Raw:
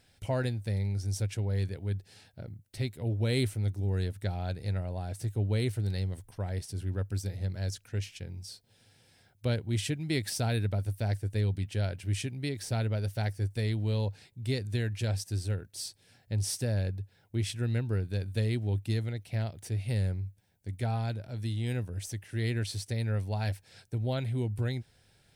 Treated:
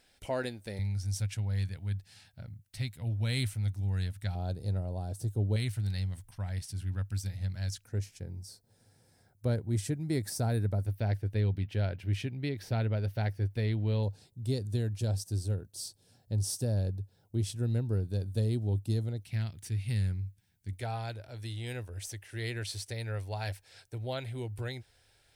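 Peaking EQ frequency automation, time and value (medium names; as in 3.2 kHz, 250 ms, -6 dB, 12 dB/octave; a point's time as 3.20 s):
peaking EQ -14.5 dB 1.2 oct
110 Hz
from 0.79 s 400 Hz
from 4.35 s 2.1 kHz
from 5.56 s 420 Hz
from 7.85 s 2.9 kHz
from 10.86 s 8.3 kHz
from 14.03 s 2.1 kHz
from 19.24 s 570 Hz
from 20.73 s 180 Hz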